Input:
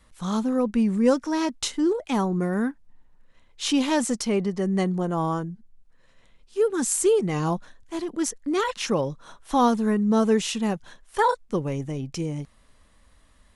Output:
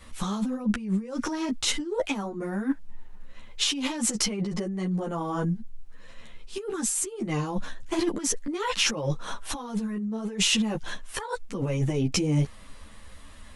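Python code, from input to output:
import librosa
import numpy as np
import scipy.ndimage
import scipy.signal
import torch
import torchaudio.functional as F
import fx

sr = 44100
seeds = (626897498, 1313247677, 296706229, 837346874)

y = fx.over_compress(x, sr, threshold_db=-32.0, ratio=-1.0)
y = fx.peak_eq(y, sr, hz=2700.0, db=2.5, octaves=0.77)
y = fx.ensemble(y, sr)
y = y * 10.0 ** (6.0 / 20.0)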